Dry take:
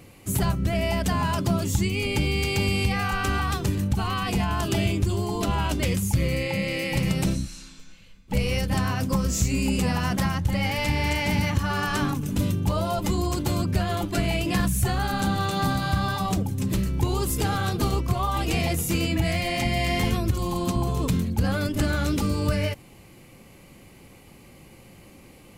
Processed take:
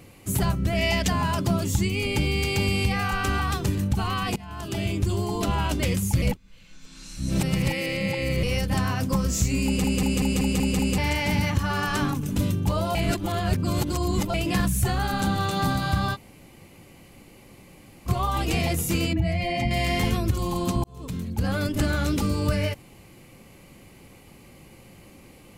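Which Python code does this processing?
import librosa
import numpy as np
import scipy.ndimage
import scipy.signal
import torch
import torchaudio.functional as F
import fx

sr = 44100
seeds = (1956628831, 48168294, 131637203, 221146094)

y = fx.spec_box(x, sr, start_s=0.77, length_s=0.31, low_hz=1700.0, high_hz=7700.0, gain_db=7)
y = fx.spec_expand(y, sr, power=1.5, at=(19.13, 19.71))
y = fx.edit(y, sr, fx.fade_in_from(start_s=4.36, length_s=0.75, floor_db=-23.0),
    fx.reverse_span(start_s=6.22, length_s=2.21),
    fx.stutter_over(start_s=9.65, slice_s=0.19, count=7),
    fx.reverse_span(start_s=12.95, length_s=1.39),
    fx.room_tone_fill(start_s=16.15, length_s=1.92, crossfade_s=0.04),
    fx.fade_in_span(start_s=20.84, length_s=0.76), tone=tone)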